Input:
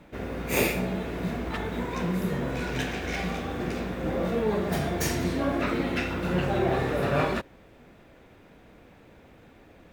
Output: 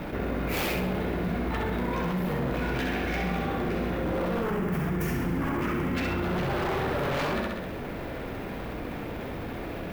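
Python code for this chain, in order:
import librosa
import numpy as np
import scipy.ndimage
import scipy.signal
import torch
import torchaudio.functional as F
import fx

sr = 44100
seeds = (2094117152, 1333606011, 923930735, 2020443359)

p1 = fx.quant_companded(x, sr, bits=4)
p2 = x + (p1 * librosa.db_to_amplitude(-3.0))
p3 = fx.peak_eq(p2, sr, hz=7500.0, db=-13.5, octaves=1.5)
p4 = 10.0 ** (-19.5 / 20.0) * (np.abs((p3 / 10.0 ** (-19.5 / 20.0) + 3.0) % 4.0 - 2.0) - 1.0)
p5 = fx.graphic_eq_15(p4, sr, hz=(160, 630, 4000), db=(5, -8, -12), at=(4.42, 5.95))
p6 = p5 + fx.echo_feedback(p5, sr, ms=66, feedback_pct=39, wet_db=-5.0, dry=0)
p7 = fx.env_flatten(p6, sr, amount_pct=70)
y = p7 * librosa.db_to_amplitude(-7.5)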